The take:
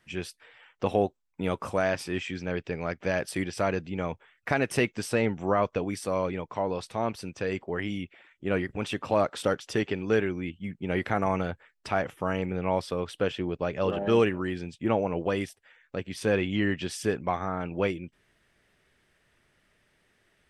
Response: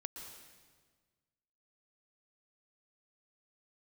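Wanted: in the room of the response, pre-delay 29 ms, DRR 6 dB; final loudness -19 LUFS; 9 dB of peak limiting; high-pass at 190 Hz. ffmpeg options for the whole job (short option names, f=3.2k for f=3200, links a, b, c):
-filter_complex "[0:a]highpass=190,alimiter=limit=-18dB:level=0:latency=1,asplit=2[a][b];[1:a]atrim=start_sample=2205,adelay=29[c];[b][c]afir=irnorm=-1:irlink=0,volume=-3.5dB[d];[a][d]amix=inputs=2:normalize=0,volume=12.5dB"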